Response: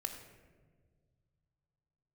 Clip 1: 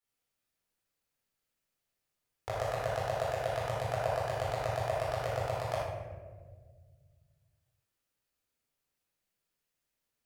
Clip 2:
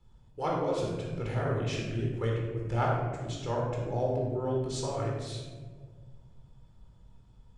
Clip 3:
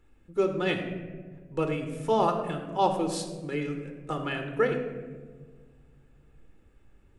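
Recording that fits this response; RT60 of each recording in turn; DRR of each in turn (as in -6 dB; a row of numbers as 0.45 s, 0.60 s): 3; 1.6 s, 1.6 s, 1.7 s; -10.0 dB, -3.0 dB, 5.0 dB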